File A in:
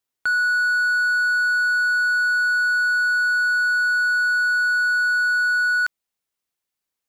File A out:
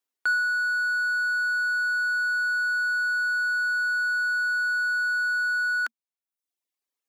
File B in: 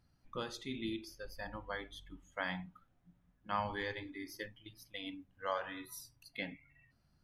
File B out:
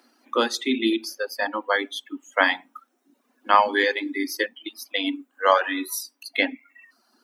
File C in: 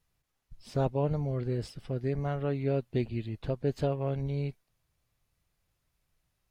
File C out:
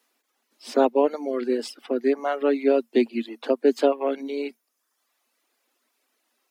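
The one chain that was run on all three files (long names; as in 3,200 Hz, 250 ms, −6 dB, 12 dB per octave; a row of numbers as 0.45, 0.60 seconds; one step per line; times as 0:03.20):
Chebyshev high-pass filter 230 Hz, order 8
reverb reduction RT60 0.85 s
loudness normalisation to −24 LKFS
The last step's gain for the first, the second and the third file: −2.5, +20.0, +12.5 decibels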